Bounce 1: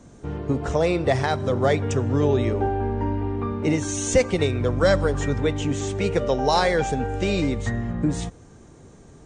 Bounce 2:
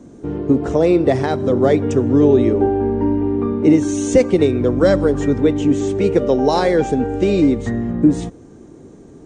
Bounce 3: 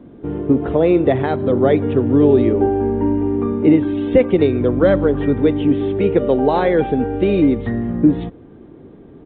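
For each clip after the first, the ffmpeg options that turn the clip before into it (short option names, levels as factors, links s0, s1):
-af "equalizer=f=310:w=0.86:g=13.5,volume=0.841"
-af "aresample=8000,aresample=44100"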